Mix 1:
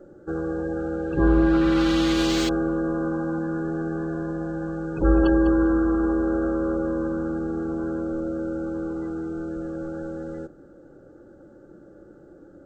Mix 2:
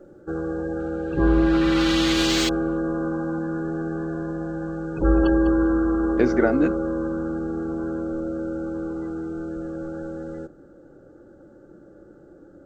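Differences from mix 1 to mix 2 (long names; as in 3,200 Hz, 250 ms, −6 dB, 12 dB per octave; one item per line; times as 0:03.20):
speech: unmuted
second sound +5.5 dB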